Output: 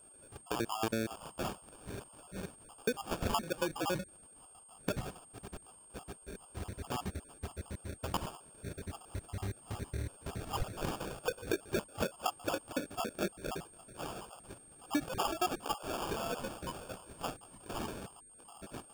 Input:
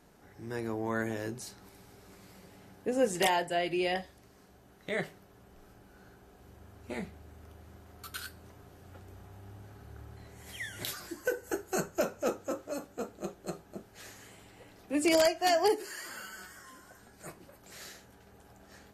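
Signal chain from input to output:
time-frequency cells dropped at random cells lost 75%
high-shelf EQ 6,200 Hz +4.5 dB, from 0:16.74 +11.5 dB, from 0:17.89 +2.5 dB
noise gate −59 dBFS, range −6 dB
downward compressor 4 to 1, threshold −47 dBFS, peak gain reduction 17 dB
decimation without filtering 22×
steady tone 8,600 Hz −70 dBFS
level +14 dB

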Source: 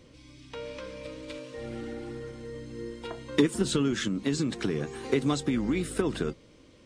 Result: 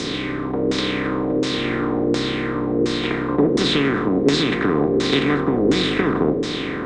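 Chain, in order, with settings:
compressor on every frequency bin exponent 0.2
auto-filter low-pass saw down 1.4 Hz 430–6,000 Hz
multiband upward and downward expander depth 40%

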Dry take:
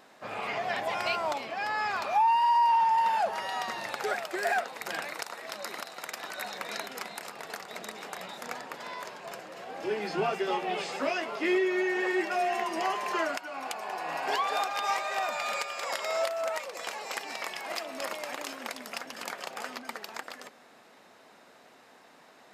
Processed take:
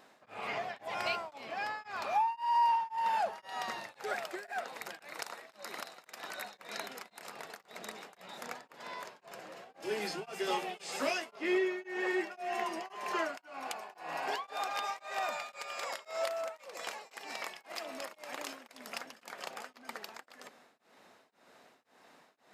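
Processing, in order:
0:09.82–0:11.31: parametric band 11,000 Hz +13.5 dB 2 octaves
tremolo along a rectified sine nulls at 1.9 Hz
level −3.5 dB

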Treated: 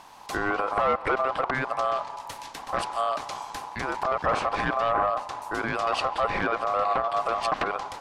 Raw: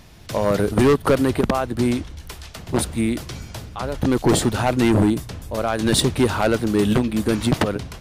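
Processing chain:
ring modulation 920 Hz
treble cut that deepens with the level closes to 2,800 Hz, closed at −16.5 dBFS
brickwall limiter −16 dBFS, peak gain reduction 6.5 dB
on a send: tape delay 172 ms, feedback 67%, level −17.5 dB, low-pass 2,800 Hz

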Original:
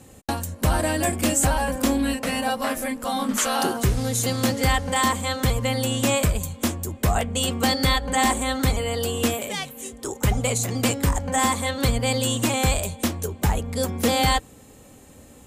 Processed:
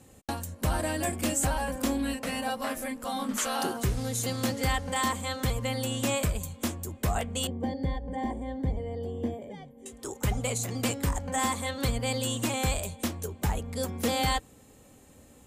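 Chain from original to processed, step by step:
0:07.47–0:09.86: moving average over 33 samples
level −7 dB

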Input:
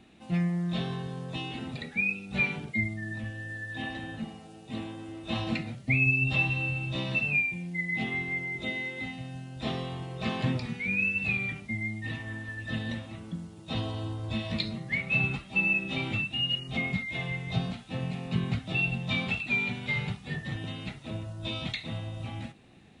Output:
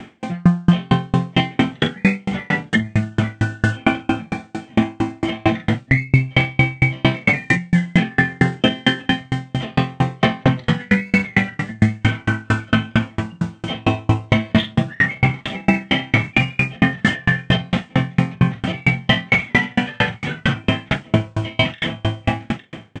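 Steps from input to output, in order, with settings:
high-pass filter 200 Hz 6 dB per octave
high-shelf EQ 5,000 Hz −9 dB
mains-hum notches 50/100/150/200/250/300/350 Hz
formants moved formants −3 semitones
in parallel at −11 dB: soft clipping −31.5 dBFS, distortion −9 dB
on the sum: double-tracking delay 45 ms −2.5 dB
on a send: single-tap delay 855 ms −19 dB
on the sum: boost into a limiter +25.5 dB
tremolo with a ramp in dB decaying 4.4 Hz, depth 38 dB

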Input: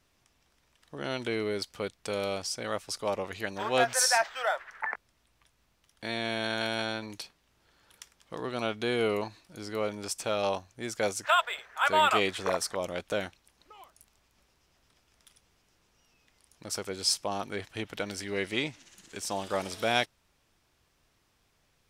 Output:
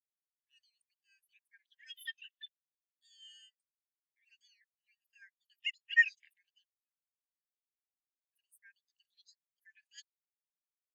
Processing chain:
low-pass filter 10,000 Hz 12 dB per octave
notch filter 5,200 Hz, Q 6.3
wrong playback speed 7.5 ips tape played at 15 ips
high-shelf EQ 7,400 Hz −3 dB
in parallel at −11 dB: log-companded quantiser 2 bits
on the sum: Chebyshev high-pass filter 1,600 Hz, order 8
every bin expanded away from the loudest bin 2.5 to 1
level −4.5 dB

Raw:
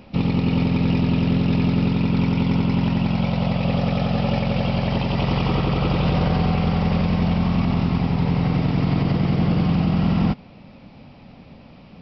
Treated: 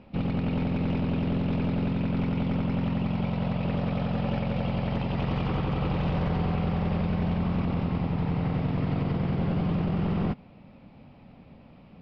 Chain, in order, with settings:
wavefolder on the positive side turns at −16 dBFS
high-frequency loss of the air 240 metres
level −6 dB

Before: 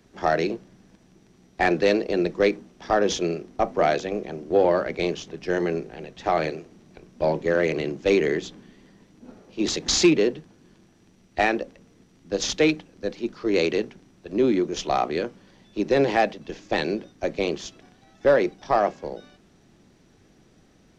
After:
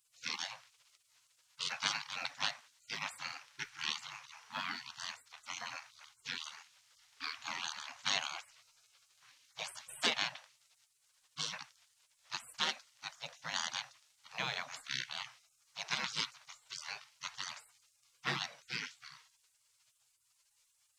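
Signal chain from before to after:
elliptic high-pass filter 160 Hz, stop band 40 dB
mains-hum notches 60/120/180/240/300/360/420 Hz
gate on every frequency bin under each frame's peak −30 dB weak
level +5 dB

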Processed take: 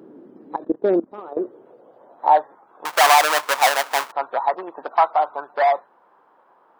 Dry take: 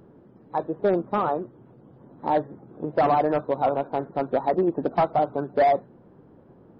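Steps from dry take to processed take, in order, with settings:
0:02.85–0:04.12: each half-wave held at its own peak
high-pass filter sweep 290 Hz → 990 Hz, 0:01.02–0:02.61
0:00.56–0:01.37: output level in coarse steps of 20 dB
level +3.5 dB

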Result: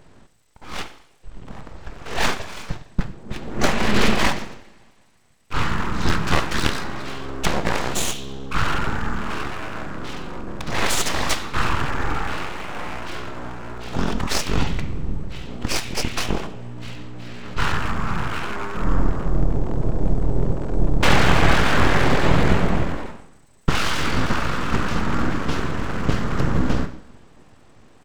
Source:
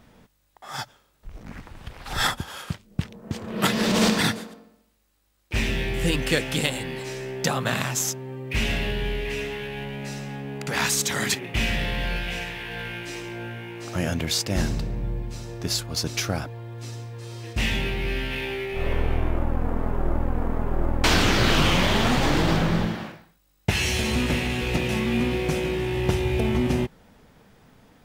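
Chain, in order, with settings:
pitch shifter −11.5 semitones
coupled-rooms reverb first 0.67 s, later 2.6 s, from −22 dB, DRR 8 dB
full-wave rectification
level +6 dB

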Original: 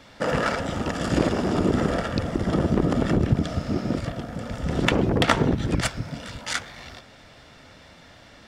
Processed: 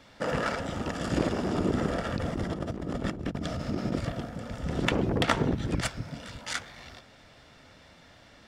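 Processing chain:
0:02.06–0:04.29: compressor whose output falls as the input rises −25 dBFS, ratio −0.5
level −5.5 dB

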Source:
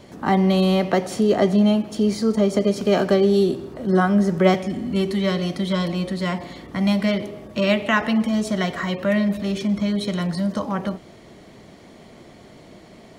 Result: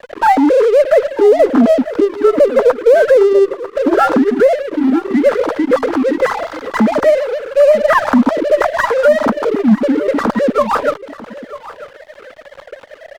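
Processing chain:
three sine waves on the formant tracks
Butterworth low-pass 1,600 Hz 36 dB per octave
low-shelf EQ 430 Hz −11.5 dB
downward compressor 2 to 1, threshold −44 dBFS, peak gain reduction 17.5 dB
notch comb filter 370 Hz
dead-zone distortion −55 dBFS
on a send: single-tap delay 944 ms −16.5 dB
on the sum: boost into a limiter +30.5 dB
windowed peak hold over 3 samples
level −1 dB

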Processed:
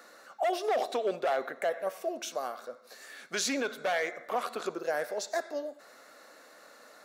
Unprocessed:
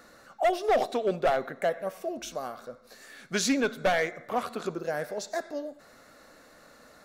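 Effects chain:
high-pass filter 380 Hz 12 dB per octave
brickwall limiter −21.5 dBFS, peak gain reduction 7 dB
level +1 dB

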